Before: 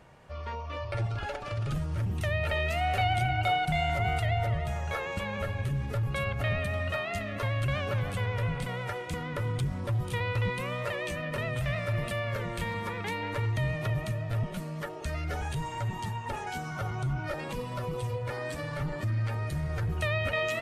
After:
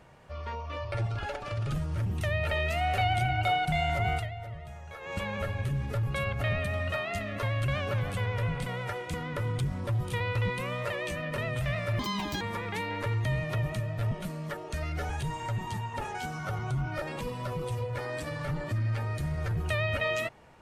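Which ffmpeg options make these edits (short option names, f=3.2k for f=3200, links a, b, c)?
-filter_complex "[0:a]asplit=5[a][b][c][d][e];[a]atrim=end=4.3,asetpts=PTS-STARTPTS,afade=t=out:st=4.14:d=0.16:silence=0.266073[f];[b]atrim=start=4.3:end=5,asetpts=PTS-STARTPTS,volume=-11.5dB[g];[c]atrim=start=5:end=11.994,asetpts=PTS-STARTPTS,afade=t=in:d=0.16:silence=0.266073[h];[d]atrim=start=11.99:end=12.73,asetpts=PTS-STARTPTS,asetrate=77616,aresample=44100,atrim=end_sample=18542,asetpts=PTS-STARTPTS[i];[e]atrim=start=12.726[j];[f][g][h]concat=n=3:v=0:a=1[k];[k][i]acrossfade=d=0.004:c1=hsin:c2=hsin[l];[l][j]acrossfade=d=0.004:c1=hsin:c2=hsin"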